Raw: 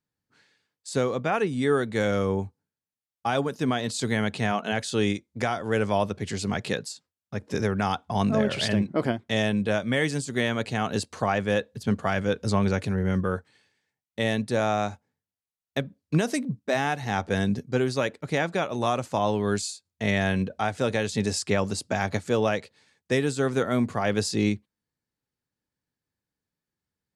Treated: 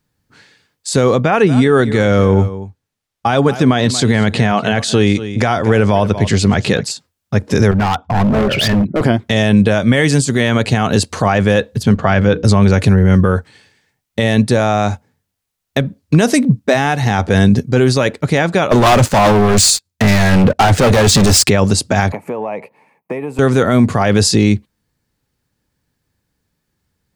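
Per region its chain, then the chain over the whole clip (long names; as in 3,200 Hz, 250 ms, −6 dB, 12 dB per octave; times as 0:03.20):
0:01.21–0:06.91: high-shelf EQ 9,800 Hz −10.5 dB + single-tap delay 234 ms −17.5 dB
0:07.71–0:09.01: spectral envelope exaggerated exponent 1.5 + Chebyshev low-pass with heavy ripple 7,800 Hz, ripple 3 dB + hard clipping −28 dBFS
0:11.96–0:12.44: high-pass filter 41 Hz + high-frequency loss of the air 120 metres + mains-hum notches 60/120/180/240/300/360/420/480 Hz
0:18.71–0:21.49: leveller curve on the samples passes 3 + gain into a clipping stage and back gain 20 dB + multiband upward and downward expander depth 40%
0:22.12–0:23.39: drawn EQ curve 100 Hz 0 dB, 240 Hz −6 dB, 350 Hz −5 dB, 570 Hz −1 dB, 970 Hz +6 dB, 1,500 Hz −15 dB, 2,400 Hz −3 dB, 3,500 Hz −27 dB, 7,500 Hz −24 dB, 13,000 Hz −4 dB + downward compressor 12 to 1, threshold −33 dBFS + high-pass filter 180 Hz 24 dB per octave
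whole clip: low-shelf EQ 92 Hz +10.5 dB; boost into a limiter +17 dB; level −1 dB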